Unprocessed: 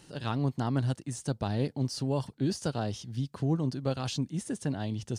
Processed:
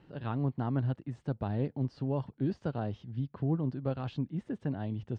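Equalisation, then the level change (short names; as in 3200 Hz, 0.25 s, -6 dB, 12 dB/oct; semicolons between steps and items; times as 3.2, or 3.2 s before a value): steep low-pass 8400 Hz; air absorption 500 m; -1.5 dB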